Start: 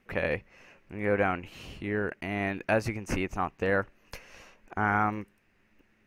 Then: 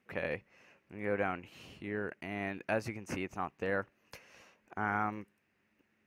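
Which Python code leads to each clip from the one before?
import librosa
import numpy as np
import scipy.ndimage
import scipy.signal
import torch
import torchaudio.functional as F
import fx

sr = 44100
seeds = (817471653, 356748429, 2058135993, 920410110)

y = scipy.signal.sosfilt(scipy.signal.butter(2, 100.0, 'highpass', fs=sr, output='sos'), x)
y = F.gain(torch.from_numpy(y), -7.0).numpy()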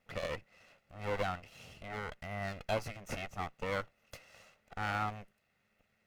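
y = fx.lower_of_two(x, sr, delay_ms=1.5)
y = F.gain(torch.from_numpy(y), 1.0).numpy()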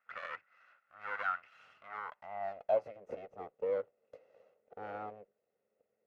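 y = fx.filter_sweep_bandpass(x, sr, from_hz=1400.0, to_hz=470.0, start_s=1.71, end_s=3.05, q=4.8)
y = fx.dynamic_eq(y, sr, hz=2300.0, q=1.1, threshold_db=-60.0, ratio=4.0, max_db=3)
y = F.gain(torch.from_numpy(y), 7.5).numpy()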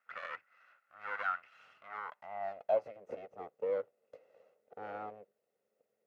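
y = fx.highpass(x, sr, hz=120.0, slope=6)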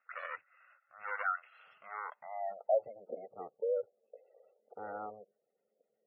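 y = fx.spec_gate(x, sr, threshold_db=-20, keep='strong')
y = F.gain(torch.from_numpy(y), 1.0).numpy()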